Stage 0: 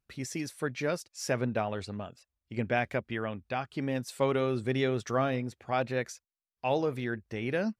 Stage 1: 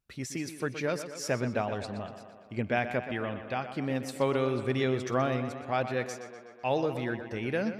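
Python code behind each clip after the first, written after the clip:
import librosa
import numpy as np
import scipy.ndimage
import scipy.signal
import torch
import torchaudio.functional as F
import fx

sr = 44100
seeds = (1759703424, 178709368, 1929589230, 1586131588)

y = fx.echo_tape(x, sr, ms=123, feedback_pct=71, wet_db=-10.0, lp_hz=5200.0, drive_db=8.0, wow_cents=36)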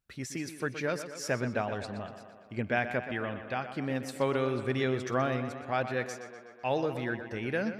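y = fx.peak_eq(x, sr, hz=1600.0, db=4.0, octaves=0.52)
y = y * librosa.db_to_amplitude(-1.5)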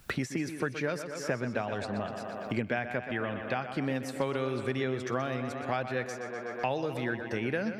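y = fx.band_squash(x, sr, depth_pct=100)
y = y * librosa.db_to_amplitude(-1.5)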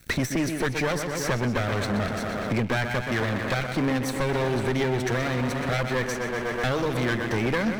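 y = fx.lower_of_two(x, sr, delay_ms=0.5)
y = fx.leveller(y, sr, passes=3)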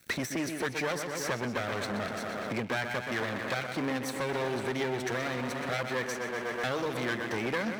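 y = fx.highpass(x, sr, hz=280.0, slope=6)
y = y * librosa.db_to_amplitude(-4.5)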